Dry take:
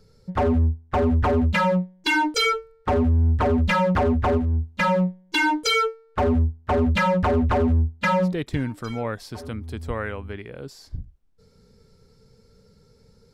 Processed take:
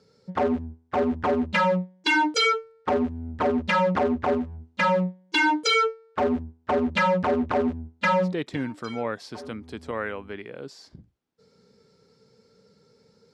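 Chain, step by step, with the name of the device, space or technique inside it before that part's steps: public-address speaker with an overloaded transformer (transformer saturation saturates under 130 Hz; band-pass 200–6900 Hz)

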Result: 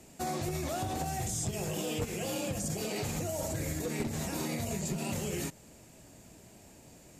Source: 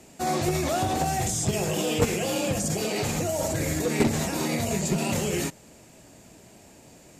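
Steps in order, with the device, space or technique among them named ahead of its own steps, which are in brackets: ASMR close-microphone chain (bass shelf 140 Hz +6 dB; compression 5:1, threshold -26 dBFS, peak gain reduction 10 dB; treble shelf 10 kHz +6 dB); trim -5.5 dB

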